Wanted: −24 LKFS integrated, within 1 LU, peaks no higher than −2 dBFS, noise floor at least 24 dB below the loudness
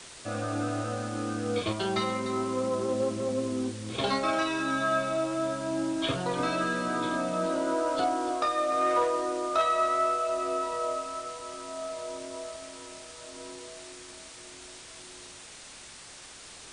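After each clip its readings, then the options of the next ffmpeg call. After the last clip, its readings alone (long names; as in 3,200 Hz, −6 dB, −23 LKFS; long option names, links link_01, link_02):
background noise floor −47 dBFS; target noise floor −54 dBFS; integrated loudness −29.5 LKFS; sample peak −14.5 dBFS; target loudness −24.0 LKFS
→ -af "afftdn=noise_reduction=7:noise_floor=-47"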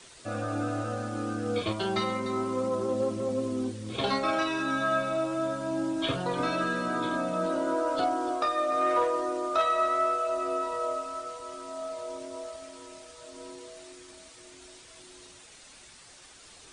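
background noise floor −52 dBFS; target noise floor −54 dBFS
→ -af "afftdn=noise_reduction=6:noise_floor=-52"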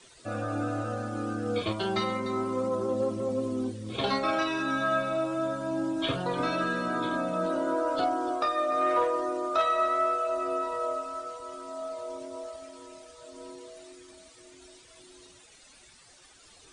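background noise floor −56 dBFS; integrated loudness −29.5 LKFS; sample peak −15.0 dBFS; target loudness −24.0 LKFS
→ -af "volume=5.5dB"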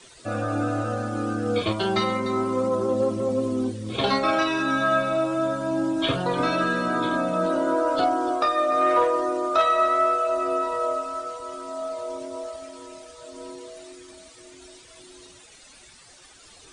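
integrated loudness −24.0 LKFS; sample peak −9.5 dBFS; background noise floor −50 dBFS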